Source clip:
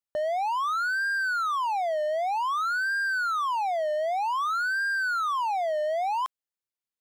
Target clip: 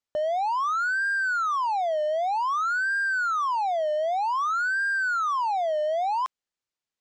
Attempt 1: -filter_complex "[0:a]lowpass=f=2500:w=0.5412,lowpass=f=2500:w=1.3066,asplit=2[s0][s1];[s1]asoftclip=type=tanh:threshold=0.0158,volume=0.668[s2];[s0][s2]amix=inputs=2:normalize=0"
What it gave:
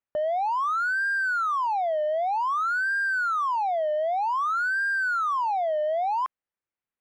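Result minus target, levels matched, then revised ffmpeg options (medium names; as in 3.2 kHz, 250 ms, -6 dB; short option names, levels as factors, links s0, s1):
8 kHz band -6.0 dB
-filter_complex "[0:a]lowpass=f=7700:w=0.5412,lowpass=f=7700:w=1.3066,asplit=2[s0][s1];[s1]asoftclip=type=tanh:threshold=0.0158,volume=0.668[s2];[s0][s2]amix=inputs=2:normalize=0"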